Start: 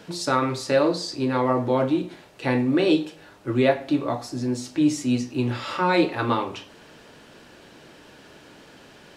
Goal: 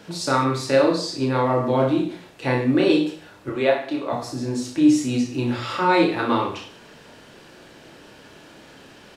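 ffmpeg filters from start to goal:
-filter_complex "[0:a]asettb=1/sr,asplit=3[s0][s1][s2];[s0]atrim=end=3.494[s3];[s1]atrim=start=3.49:end=4.13,asetpts=PTS-STARTPTS,afade=t=in:d=0.004:c=qsin,afade=t=out:st=0.636:d=0.004:c=qsin,bass=f=250:g=-15,treble=f=4000:g=-4[s4];[s2]atrim=start=4.126[s5];[s3][s4]acrossfade=d=0.004:c1=hsin:c2=qsin[s6];[s6][s5]acrossfade=d=0.004:c1=qsin:c2=hsin,aecho=1:1:30|63|99.3|139.2|183.2:0.631|0.398|0.251|0.158|0.1"

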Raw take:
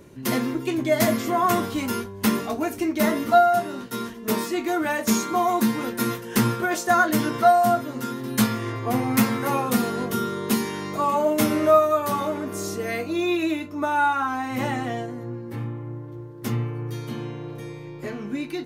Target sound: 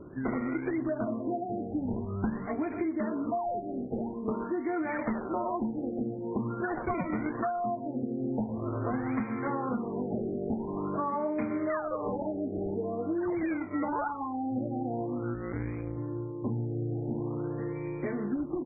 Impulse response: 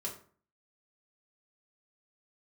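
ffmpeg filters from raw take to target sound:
-filter_complex "[0:a]equalizer=f=290:t=o:w=0.59:g=5,asplit=2[s0][s1];[s1]adelay=120,highpass=300,lowpass=3400,asoftclip=type=hard:threshold=0.2,volume=0.251[s2];[s0][s2]amix=inputs=2:normalize=0,acrusher=samples=15:mix=1:aa=0.000001:lfo=1:lforange=24:lforate=0.6,asettb=1/sr,asplit=3[s3][s4][s5];[s3]atrim=end=1.854[s6];[s4]atrim=start=1.85:end=2.47,asetpts=PTS-STARTPTS,afade=t=in:d=0.004:c=qsin,afade=t=out:st=0.616:d=0.004:c=qsin,lowshelf=f=220:t=q:w=1.5:g=6.5[s7];[s5]atrim=start=2.466[s8];[s6][s7]acrossfade=d=0.004:c1=hsin:c2=qsin[s9];[s9][s8]acrossfade=d=0.004:c1=qsin:c2=hsin,asplit=3[s10][s11][s12];[s10]afade=t=out:st=15.33:d=0.02[s13];[s11]tremolo=f=180:d=0.947,afade=t=in:st=15.33:d=0.02,afade=t=out:st=15.97:d=0.02[s14];[s12]afade=t=in:st=15.97:d=0.02[s15];[s13][s14][s15]amix=inputs=3:normalize=0,acompressor=threshold=0.0398:ratio=10,afftfilt=real='re*lt(b*sr/1024,800*pow(2500/800,0.5+0.5*sin(2*PI*0.46*pts/sr)))':imag='im*lt(b*sr/1024,800*pow(2500/800,0.5+0.5*sin(2*PI*0.46*pts/sr)))':win_size=1024:overlap=0.75"

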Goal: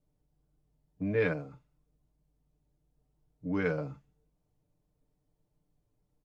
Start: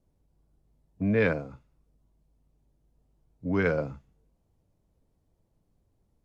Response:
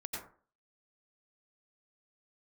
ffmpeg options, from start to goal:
-af "aecho=1:1:6.7:0.65,volume=0.473"

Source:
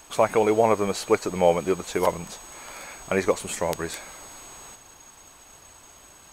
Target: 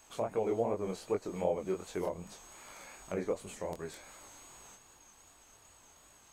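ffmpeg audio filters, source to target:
-filter_complex "[0:a]acrossover=split=720[s0][s1];[s1]acompressor=threshold=0.0158:ratio=6[s2];[s0][s2]amix=inputs=2:normalize=0,flanger=delay=19.5:depth=7.4:speed=2.6,volume=0.422"

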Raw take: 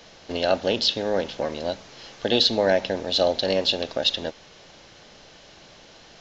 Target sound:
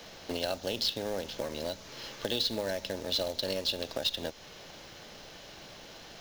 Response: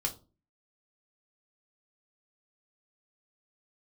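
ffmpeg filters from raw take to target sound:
-filter_complex "[0:a]acrossover=split=93|4600[s0][s1][s2];[s0]acompressor=threshold=0.00316:ratio=4[s3];[s1]acompressor=threshold=0.0224:ratio=4[s4];[s2]acompressor=threshold=0.0178:ratio=4[s5];[s3][s4][s5]amix=inputs=3:normalize=0,acrusher=bits=3:mode=log:mix=0:aa=0.000001,asettb=1/sr,asplit=3[s6][s7][s8];[s6]atrim=end=1.374[s9];[s7]atrim=start=1.37:end=3.85,asetpts=PTS-STARTPTS,afade=t=in:d=0.004:c=qsin,afade=t=out:st=2.476:d=0.004:c=qsin,asuperstop=centerf=750:order=4:qfactor=7.2[s10];[s8]atrim=start=3.846[s11];[s9][s10]acrossfade=d=0.004:c1=hsin:c2=qsin[s12];[s12][s11]acrossfade=d=0.004:c1=qsin:c2=hsin"

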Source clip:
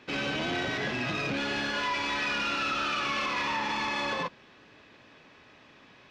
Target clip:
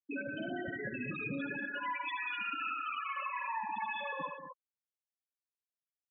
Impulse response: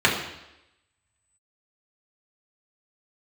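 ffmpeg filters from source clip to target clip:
-filter_complex "[0:a]afftfilt=real='re*gte(hypot(re,im),0.112)':imag='im*gte(hypot(re,im),0.112)':win_size=1024:overlap=0.75,alimiter=level_in=2.24:limit=0.0631:level=0:latency=1:release=324,volume=0.447,asplit=2[s0][s1];[s1]aecho=0:1:76|192|229|255:0.376|0.237|0.15|0.299[s2];[s0][s2]amix=inputs=2:normalize=0"

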